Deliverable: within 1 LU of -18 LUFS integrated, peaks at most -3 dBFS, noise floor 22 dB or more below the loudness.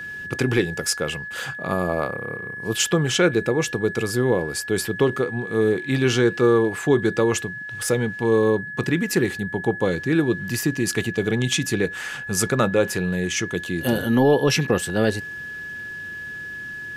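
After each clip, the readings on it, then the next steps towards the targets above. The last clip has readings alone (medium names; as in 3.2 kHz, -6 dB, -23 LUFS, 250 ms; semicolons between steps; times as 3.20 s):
steady tone 1.7 kHz; tone level -31 dBFS; loudness -22.5 LUFS; peak level -7.5 dBFS; loudness target -18.0 LUFS
-> band-stop 1.7 kHz, Q 30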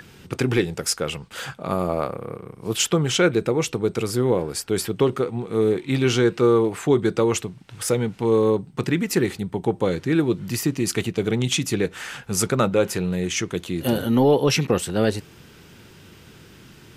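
steady tone not found; loudness -22.5 LUFS; peak level -8.0 dBFS; loudness target -18.0 LUFS
-> trim +4.5 dB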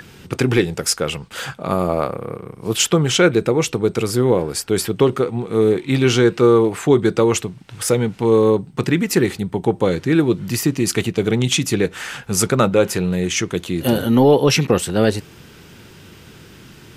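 loudness -18.0 LUFS; peak level -3.5 dBFS; noise floor -43 dBFS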